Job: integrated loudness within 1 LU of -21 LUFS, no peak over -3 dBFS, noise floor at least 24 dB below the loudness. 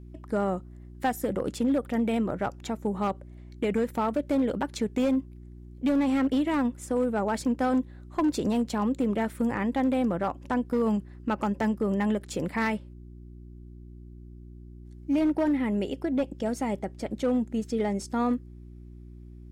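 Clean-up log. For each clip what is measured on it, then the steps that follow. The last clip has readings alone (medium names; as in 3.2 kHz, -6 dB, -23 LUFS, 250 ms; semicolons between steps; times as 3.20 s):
clipped samples 1.5%; clipping level -19.5 dBFS; hum 60 Hz; highest harmonic 360 Hz; hum level -43 dBFS; loudness -28.0 LUFS; peak level -19.5 dBFS; loudness target -21.0 LUFS
-> clip repair -19.5 dBFS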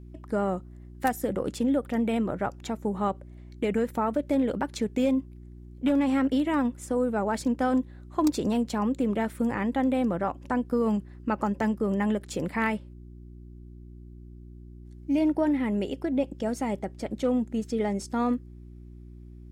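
clipped samples 0.0%; hum 60 Hz; highest harmonic 360 Hz; hum level -43 dBFS
-> de-hum 60 Hz, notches 6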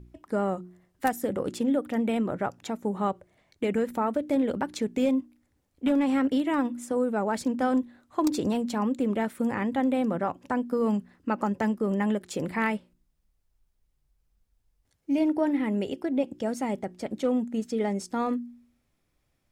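hum not found; loudness -28.0 LUFS; peak level -10.5 dBFS; loudness target -21.0 LUFS
-> trim +7 dB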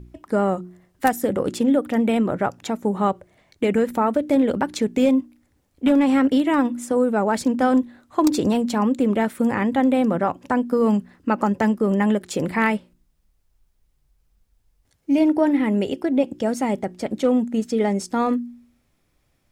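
loudness -21.0 LUFS; peak level -3.5 dBFS; noise floor -67 dBFS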